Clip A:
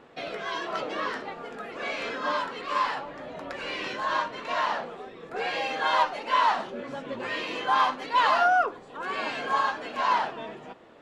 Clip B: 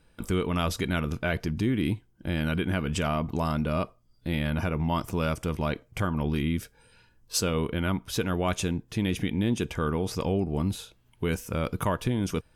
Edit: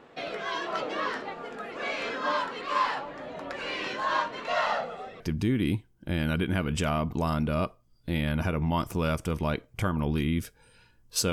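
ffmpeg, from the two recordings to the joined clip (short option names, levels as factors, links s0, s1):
-filter_complex "[0:a]asettb=1/sr,asplit=3[s0][s1][s2];[s0]atrim=end=4.474[s3];[s1]atrim=start=4.47:end=5.2,asetpts=PTS-STARTPTS,afade=t=in:d=0.004:c=qsin,afade=t=out:st=0.726:d=0.004:c=qsin,aecho=1:1:1.5:0.64,atrim=end_sample=32193[s4];[s2]atrim=start=5.196[s5];[s3][s4]acrossfade=d=0.004:c1=hsin:c2=qsin[s6];[s6][s5]acrossfade=d=0.004:c1=qsin:c2=hsin,apad=whole_dur=11.32,atrim=end=11.32,atrim=end=5.202[s7];[1:a]atrim=start=1.378:end=7.5[s8];[s7][s8]acrossfade=d=0.004:c1=hsin:c2=hsin"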